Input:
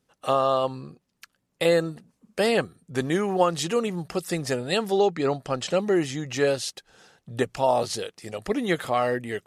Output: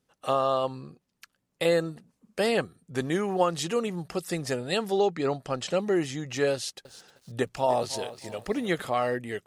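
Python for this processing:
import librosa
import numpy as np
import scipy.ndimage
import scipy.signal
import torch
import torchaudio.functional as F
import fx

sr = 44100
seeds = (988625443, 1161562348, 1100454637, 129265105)

y = fx.echo_crushed(x, sr, ms=310, feedback_pct=35, bits=8, wet_db=-14.0, at=(6.54, 8.82))
y = F.gain(torch.from_numpy(y), -3.0).numpy()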